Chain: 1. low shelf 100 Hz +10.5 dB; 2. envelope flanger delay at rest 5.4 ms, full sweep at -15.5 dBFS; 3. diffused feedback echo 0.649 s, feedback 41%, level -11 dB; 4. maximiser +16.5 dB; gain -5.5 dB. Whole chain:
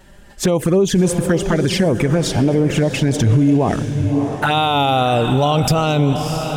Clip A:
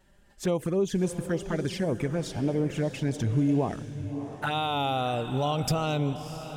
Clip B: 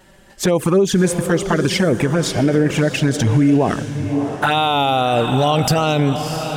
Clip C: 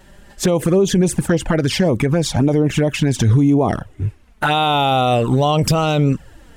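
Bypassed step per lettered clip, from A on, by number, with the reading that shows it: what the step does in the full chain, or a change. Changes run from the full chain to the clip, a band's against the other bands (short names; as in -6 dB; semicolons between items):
4, crest factor change +4.5 dB; 1, 125 Hz band -2.5 dB; 3, momentary loudness spread change +3 LU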